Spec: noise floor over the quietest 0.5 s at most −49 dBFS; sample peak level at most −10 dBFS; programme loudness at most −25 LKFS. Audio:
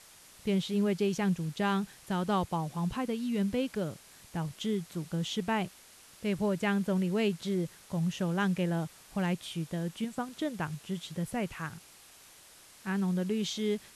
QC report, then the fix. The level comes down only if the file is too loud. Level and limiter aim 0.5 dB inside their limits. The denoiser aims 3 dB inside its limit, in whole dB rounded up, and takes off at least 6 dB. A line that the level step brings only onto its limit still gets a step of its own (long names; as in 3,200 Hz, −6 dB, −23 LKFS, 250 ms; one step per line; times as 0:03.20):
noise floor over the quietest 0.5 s −56 dBFS: in spec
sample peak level −18.5 dBFS: in spec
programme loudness −32.5 LKFS: in spec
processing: no processing needed